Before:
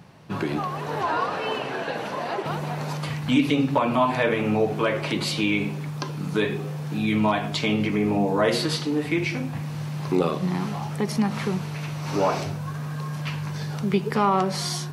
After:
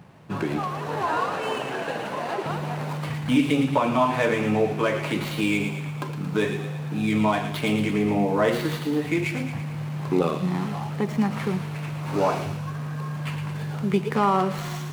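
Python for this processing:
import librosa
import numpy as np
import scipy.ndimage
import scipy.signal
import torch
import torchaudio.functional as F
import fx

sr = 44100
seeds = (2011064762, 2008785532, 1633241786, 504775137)

y = scipy.signal.medfilt(x, 9)
y = fx.echo_wet_highpass(y, sr, ms=113, feedback_pct=58, hz=1900.0, wet_db=-6.5)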